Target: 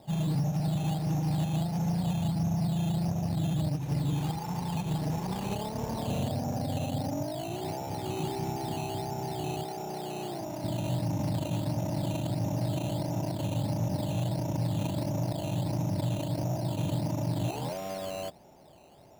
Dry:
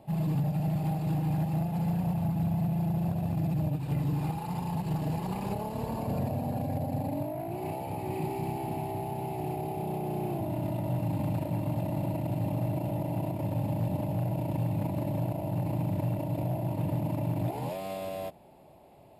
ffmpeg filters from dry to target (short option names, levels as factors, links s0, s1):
-filter_complex "[0:a]asettb=1/sr,asplit=3[s0][s1][s2];[s0]atrim=end=9.634[s3];[s1]atrim=start=9.63:end=10.64,asetpts=PTS-STARTPTS,afade=t=in:d=0.004:c=qsin,afade=t=out:st=1.006:d=0.004:c=qsin,highpass=f=380:p=1[s4];[s2]atrim=start=10.636[s5];[s3][s4]acrossfade=d=0.004:c1=hsin:c2=qsin[s6];[s6][s5]acrossfade=d=0.004:c1=qsin:c2=hsin,acrusher=samples=10:mix=1:aa=0.000001:lfo=1:lforange=6:lforate=1.5"